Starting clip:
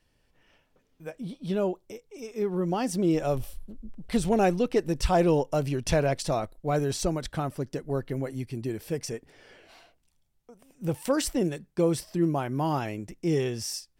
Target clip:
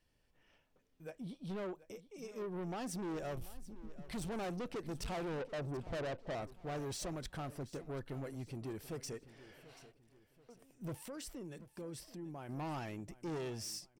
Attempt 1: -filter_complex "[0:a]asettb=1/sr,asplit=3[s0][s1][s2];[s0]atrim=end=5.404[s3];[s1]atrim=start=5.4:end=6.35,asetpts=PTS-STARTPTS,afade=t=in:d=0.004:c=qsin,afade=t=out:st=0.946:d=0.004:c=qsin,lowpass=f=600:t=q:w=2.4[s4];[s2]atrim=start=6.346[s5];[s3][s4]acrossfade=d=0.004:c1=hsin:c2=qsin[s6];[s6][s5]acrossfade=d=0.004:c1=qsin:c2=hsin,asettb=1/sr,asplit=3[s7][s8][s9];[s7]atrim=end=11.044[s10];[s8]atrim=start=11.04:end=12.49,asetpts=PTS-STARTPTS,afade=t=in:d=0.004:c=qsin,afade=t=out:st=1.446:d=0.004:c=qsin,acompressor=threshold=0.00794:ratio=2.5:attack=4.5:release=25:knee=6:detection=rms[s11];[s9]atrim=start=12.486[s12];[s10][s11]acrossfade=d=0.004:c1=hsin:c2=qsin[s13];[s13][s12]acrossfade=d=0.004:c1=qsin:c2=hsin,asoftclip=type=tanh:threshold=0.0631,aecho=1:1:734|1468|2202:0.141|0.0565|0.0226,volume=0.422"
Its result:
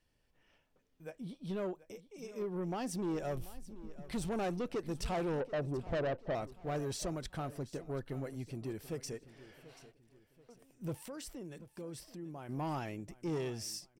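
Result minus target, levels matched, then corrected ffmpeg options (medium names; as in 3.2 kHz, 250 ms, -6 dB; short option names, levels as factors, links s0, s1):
saturation: distortion -4 dB
-filter_complex "[0:a]asettb=1/sr,asplit=3[s0][s1][s2];[s0]atrim=end=5.404[s3];[s1]atrim=start=5.4:end=6.35,asetpts=PTS-STARTPTS,afade=t=in:d=0.004:c=qsin,afade=t=out:st=0.946:d=0.004:c=qsin,lowpass=f=600:t=q:w=2.4[s4];[s2]atrim=start=6.346[s5];[s3][s4]acrossfade=d=0.004:c1=hsin:c2=qsin[s6];[s6][s5]acrossfade=d=0.004:c1=qsin:c2=hsin,asettb=1/sr,asplit=3[s7][s8][s9];[s7]atrim=end=11.044[s10];[s8]atrim=start=11.04:end=12.49,asetpts=PTS-STARTPTS,afade=t=in:d=0.004:c=qsin,afade=t=out:st=1.446:d=0.004:c=qsin,acompressor=threshold=0.00794:ratio=2.5:attack=4.5:release=25:knee=6:detection=rms[s11];[s9]atrim=start=12.486[s12];[s10][s11]acrossfade=d=0.004:c1=hsin:c2=qsin[s13];[s13][s12]acrossfade=d=0.004:c1=qsin:c2=hsin,asoftclip=type=tanh:threshold=0.0299,aecho=1:1:734|1468|2202:0.141|0.0565|0.0226,volume=0.422"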